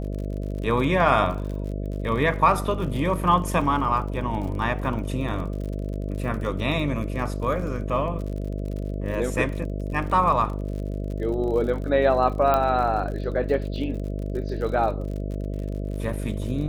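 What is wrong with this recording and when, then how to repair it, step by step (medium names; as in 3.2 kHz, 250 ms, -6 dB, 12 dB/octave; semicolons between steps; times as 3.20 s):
buzz 50 Hz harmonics 13 -29 dBFS
crackle 53 per s -33 dBFS
12.54 s: pop -10 dBFS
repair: de-click; de-hum 50 Hz, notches 13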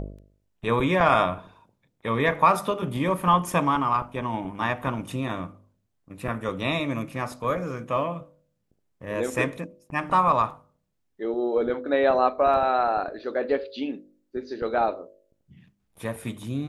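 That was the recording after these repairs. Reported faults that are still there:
12.54 s: pop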